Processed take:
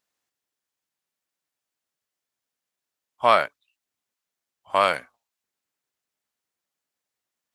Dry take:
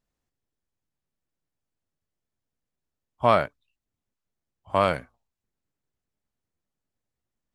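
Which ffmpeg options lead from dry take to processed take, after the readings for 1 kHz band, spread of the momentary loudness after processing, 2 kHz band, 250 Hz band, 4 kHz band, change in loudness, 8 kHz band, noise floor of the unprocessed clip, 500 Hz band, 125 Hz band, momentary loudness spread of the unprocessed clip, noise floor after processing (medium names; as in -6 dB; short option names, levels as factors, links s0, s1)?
+3.0 dB, 11 LU, +5.5 dB, -7.0 dB, +6.5 dB, +2.0 dB, no reading, under -85 dBFS, 0.0 dB, -12.5 dB, 12 LU, under -85 dBFS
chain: -af "highpass=f=1200:p=1,volume=2.24"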